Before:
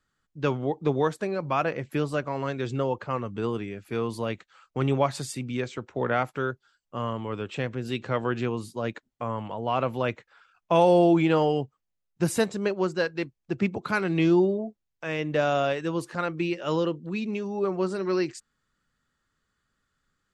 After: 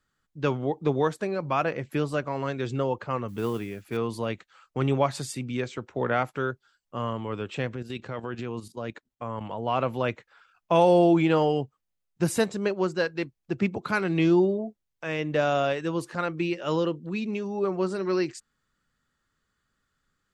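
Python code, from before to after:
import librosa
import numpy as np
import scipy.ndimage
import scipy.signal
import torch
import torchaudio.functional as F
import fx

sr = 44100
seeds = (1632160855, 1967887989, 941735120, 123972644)

y = fx.mod_noise(x, sr, seeds[0], snr_db=25, at=(3.28, 3.97))
y = fx.level_steps(y, sr, step_db=11, at=(7.76, 9.41))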